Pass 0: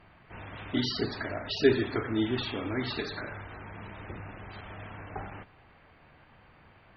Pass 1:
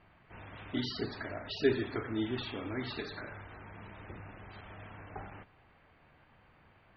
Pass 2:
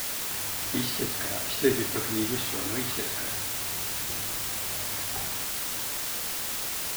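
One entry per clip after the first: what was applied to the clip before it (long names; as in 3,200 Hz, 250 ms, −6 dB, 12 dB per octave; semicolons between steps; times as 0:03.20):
low-pass filter 5,300 Hz; level −5.5 dB
bit-depth reduction 6 bits, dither triangular; level +4 dB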